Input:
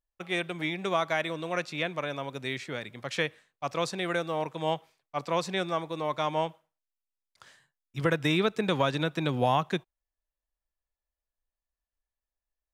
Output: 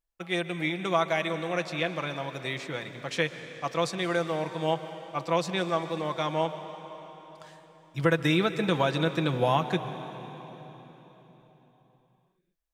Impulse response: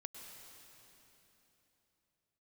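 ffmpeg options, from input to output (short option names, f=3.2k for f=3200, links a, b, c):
-filter_complex "[0:a]asplit=2[a][b];[1:a]atrim=start_sample=2205,asetrate=37044,aresample=44100,adelay=6[c];[b][c]afir=irnorm=-1:irlink=0,volume=-2.5dB[d];[a][d]amix=inputs=2:normalize=0"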